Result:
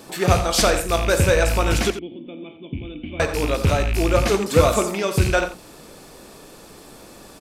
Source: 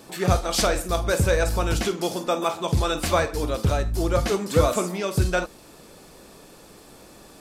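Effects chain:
loose part that buzzes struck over −28 dBFS, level −21 dBFS
0:01.90–0:03.20: formant resonators in series i
mains-hum notches 60/120/180 Hz
slap from a distant wall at 15 metres, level −11 dB
level +4 dB

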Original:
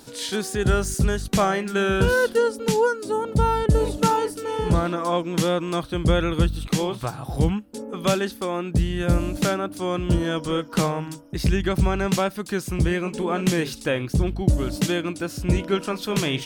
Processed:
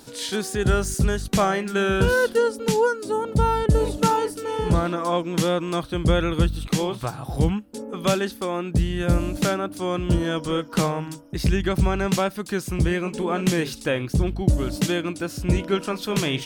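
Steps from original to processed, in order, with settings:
0:06.11–0:06.62: surface crackle 34 per second −43 dBFS

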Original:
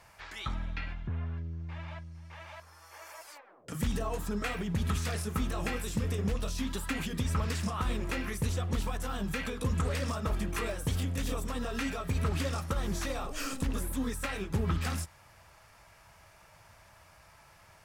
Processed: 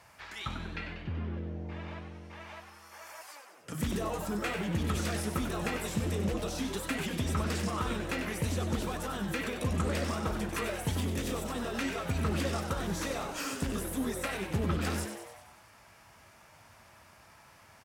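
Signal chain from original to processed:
high-pass filter 69 Hz
on a send: echo with shifted repeats 95 ms, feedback 59%, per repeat +130 Hz, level −8 dB

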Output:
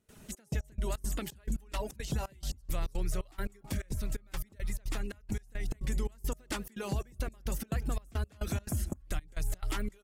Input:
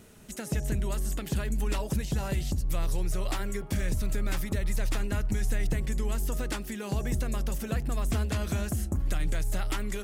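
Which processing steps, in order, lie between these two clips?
0:03.60–0:05.84: downward compressor, threshold −28 dBFS, peak gain reduction 5.5 dB
reverb reduction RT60 0.53 s
repeating echo 178 ms, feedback 43%, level −20.5 dB
brickwall limiter −23.5 dBFS, peak gain reduction 5 dB
gate pattern ".xxx..x..xx" 173 BPM −24 dB

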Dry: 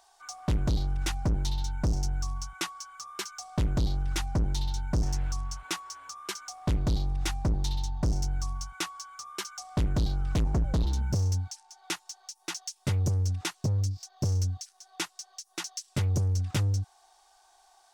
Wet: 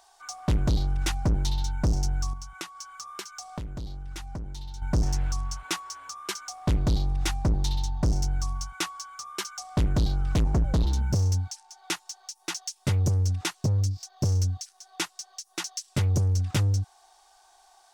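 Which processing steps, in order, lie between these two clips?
0:02.33–0:04.82: downward compressor 6 to 1, threshold −38 dBFS, peak gain reduction 13 dB
level +3 dB

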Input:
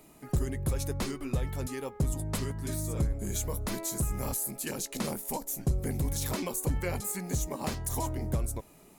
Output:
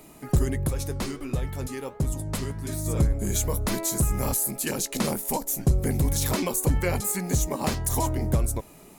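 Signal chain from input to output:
0:00.67–0:02.86: flanger 1.4 Hz, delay 6.1 ms, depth 9.9 ms, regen −82%
level +7 dB

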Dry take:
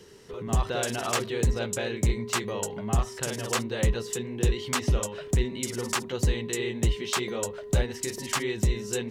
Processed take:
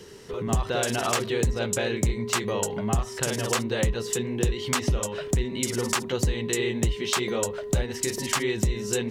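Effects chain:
downward compressor 4 to 1, threshold −27 dBFS, peak gain reduction 7.5 dB
level +5.5 dB

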